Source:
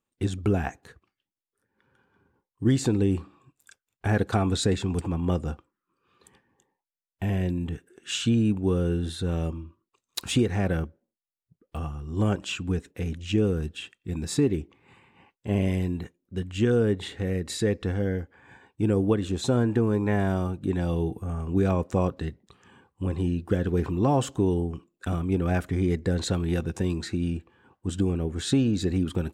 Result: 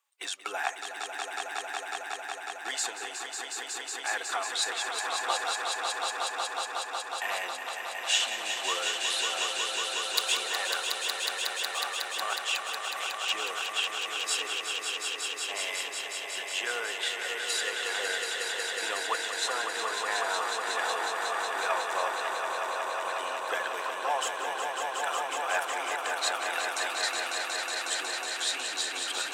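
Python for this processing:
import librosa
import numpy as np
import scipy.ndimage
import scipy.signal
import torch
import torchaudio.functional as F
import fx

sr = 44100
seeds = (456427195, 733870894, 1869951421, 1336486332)

p1 = fx.spec_quant(x, sr, step_db=15)
p2 = scipy.signal.sosfilt(scipy.signal.butter(4, 830.0, 'highpass', fs=sr, output='sos'), p1)
p3 = fx.rider(p2, sr, range_db=4, speed_s=0.5)
p4 = p3 + fx.echo_swell(p3, sr, ms=183, loudest=5, wet_db=-6, dry=0)
y = p4 * 10.0 ** (5.0 / 20.0)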